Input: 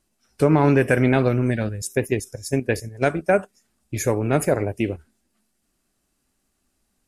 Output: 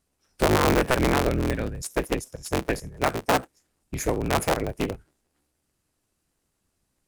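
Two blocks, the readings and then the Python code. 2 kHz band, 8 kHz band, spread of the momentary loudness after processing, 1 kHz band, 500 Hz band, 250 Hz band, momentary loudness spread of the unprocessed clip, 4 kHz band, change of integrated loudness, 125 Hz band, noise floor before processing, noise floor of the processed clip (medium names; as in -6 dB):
-2.0 dB, -1.0 dB, 10 LU, +1.0 dB, -4.5 dB, -5.5 dB, 9 LU, +7.0 dB, -4.0 dB, -7.0 dB, -72 dBFS, -76 dBFS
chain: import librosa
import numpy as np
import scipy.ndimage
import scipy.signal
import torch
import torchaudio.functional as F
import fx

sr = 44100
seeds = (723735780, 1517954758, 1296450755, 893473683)

y = fx.cycle_switch(x, sr, every=3, mode='inverted')
y = y * librosa.db_to_amplitude(-4.0)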